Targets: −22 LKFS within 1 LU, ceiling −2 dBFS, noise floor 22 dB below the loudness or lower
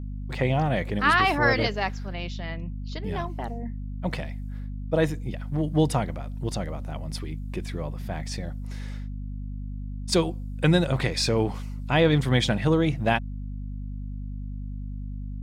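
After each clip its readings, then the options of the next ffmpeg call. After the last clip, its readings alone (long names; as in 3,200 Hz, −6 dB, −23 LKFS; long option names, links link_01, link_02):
mains hum 50 Hz; hum harmonics up to 250 Hz; level of the hum −31 dBFS; integrated loudness −27.0 LKFS; sample peak −7.0 dBFS; target loudness −22.0 LKFS
→ -af "bandreject=frequency=50:width_type=h:width=6,bandreject=frequency=100:width_type=h:width=6,bandreject=frequency=150:width_type=h:width=6,bandreject=frequency=200:width_type=h:width=6,bandreject=frequency=250:width_type=h:width=6"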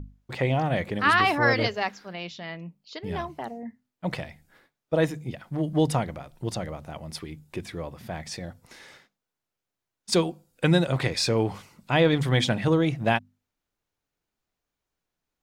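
mains hum none found; integrated loudness −26.0 LKFS; sample peak −7.5 dBFS; target loudness −22.0 LKFS
→ -af "volume=4dB"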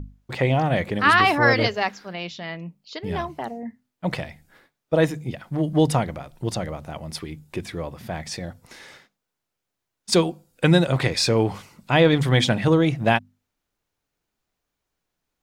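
integrated loudness −22.0 LKFS; sample peak −3.5 dBFS; background noise floor −82 dBFS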